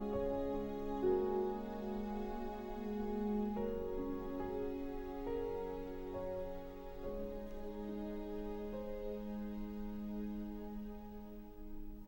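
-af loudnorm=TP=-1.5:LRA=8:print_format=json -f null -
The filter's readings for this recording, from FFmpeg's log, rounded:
"input_i" : "-43.0",
"input_tp" : "-24.7",
"input_lra" : "6.9",
"input_thresh" : "-53.3",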